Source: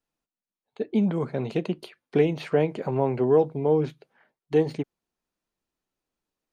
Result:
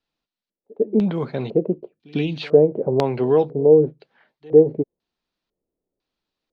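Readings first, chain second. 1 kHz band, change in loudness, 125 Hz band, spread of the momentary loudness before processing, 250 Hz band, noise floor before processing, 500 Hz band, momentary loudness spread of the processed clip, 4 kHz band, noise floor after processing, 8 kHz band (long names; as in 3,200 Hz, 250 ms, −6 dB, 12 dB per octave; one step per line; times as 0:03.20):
+1.5 dB, +6.0 dB, +3.0 dB, 12 LU, +4.0 dB, below −85 dBFS, +7.5 dB, 13 LU, +6.0 dB, below −85 dBFS, can't be measured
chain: gain on a spectral selection 0:01.88–0:02.42, 330–2,300 Hz −11 dB
echo ahead of the sound 100 ms −24 dB
auto-filter low-pass square 1 Hz 490–4,100 Hz
level +2.5 dB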